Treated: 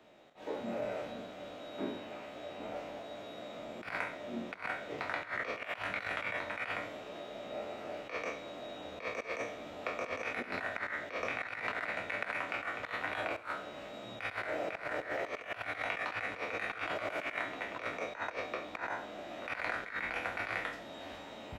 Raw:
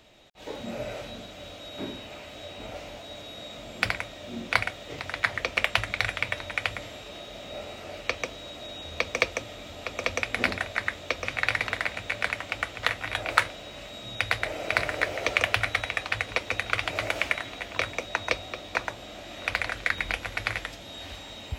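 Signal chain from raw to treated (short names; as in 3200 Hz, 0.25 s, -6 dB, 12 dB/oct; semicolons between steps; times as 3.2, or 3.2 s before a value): spectral trails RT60 0.43 s; three-band isolator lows -18 dB, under 160 Hz, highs -12 dB, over 2000 Hz; negative-ratio compressor -32 dBFS, ratio -0.5; on a send: feedback echo 67 ms, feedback 51%, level -15.5 dB; on the sum: gain -5.5 dB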